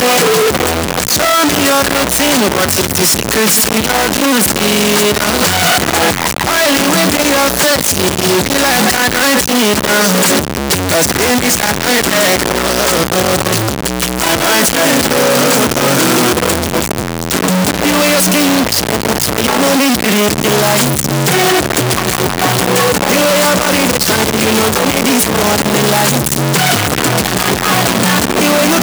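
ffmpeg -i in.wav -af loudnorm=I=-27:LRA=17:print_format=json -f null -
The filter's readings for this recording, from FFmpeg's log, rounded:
"input_i" : "-10.8",
"input_tp" : "0.2",
"input_lra" : "1.2",
"input_thresh" : "-20.8",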